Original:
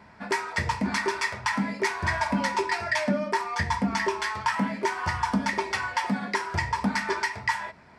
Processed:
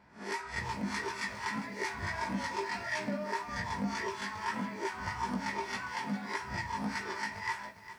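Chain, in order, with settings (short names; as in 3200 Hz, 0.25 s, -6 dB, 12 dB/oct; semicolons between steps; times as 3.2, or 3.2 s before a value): spectral swells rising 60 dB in 0.36 s; chorus 1.7 Hz, delay 16 ms, depth 4 ms; lo-fi delay 0.405 s, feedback 35%, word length 8-bit, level -13 dB; gain -8 dB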